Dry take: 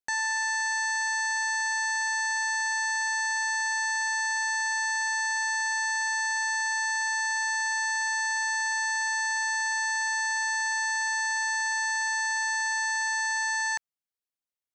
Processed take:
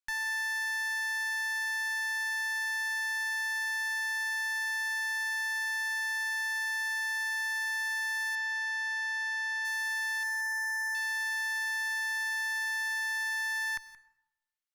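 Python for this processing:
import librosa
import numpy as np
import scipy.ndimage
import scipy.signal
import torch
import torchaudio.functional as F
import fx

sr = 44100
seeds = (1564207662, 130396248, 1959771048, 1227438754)

p1 = scipy.signal.sosfilt(scipy.signal.butter(4, 1100.0, 'highpass', fs=sr, output='sos'), x)
p2 = fx.high_shelf(p1, sr, hz=6600.0, db=-4.5)
p3 = fx.clip_asym(p2, sr, top_db=-35.0, bottom_db=-28.5)
p4 = fx.air_absorb(p3, sr, metres=63.0, at=(8.35, 9.65))
p5 = fx.brickwall_bandstop(p4, sr, low_hz=2300.0, high_hz=4600.0, at=(10.23, 10.95))
p6 = p5 + fx.echo_single(p5, sr, ms=175, db=-17.0, dry=0)
y = fx.rev_plate(p6, sr, seeds[0], rt60_s=0.89, hf_ratio=0.6, predelay_ms=80, drr_db=18.5)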